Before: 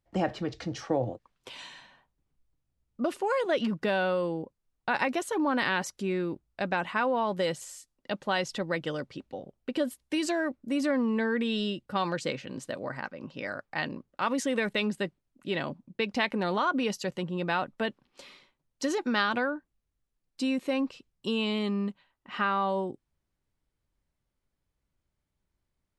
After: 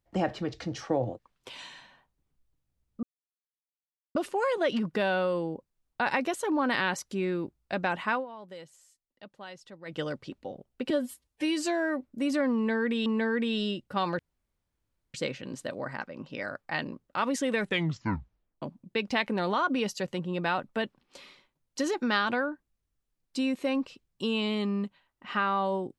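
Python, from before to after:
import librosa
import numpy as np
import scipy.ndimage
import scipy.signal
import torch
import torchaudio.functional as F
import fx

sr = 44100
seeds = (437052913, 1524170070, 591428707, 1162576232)

y = fx.edit(x, sr, fx.insert_silence(at_s=3.03, length_s=1.12),
    fx.fade_down_up(start_s=7.01, length_s=1.85, db=-16.0, fade_s=0.13),
    fx.stretch_span(start_s=9.78, length_s=0.76, factor=1.5),
    fx.repeat(start_s=11.05, length_s=0.51, count=2),
    fx.insert_room_tone(at_s=12.18, length_s=0.95),
    fx.tape_stop(start_s=14.67, length_s=0.99), tone=tone)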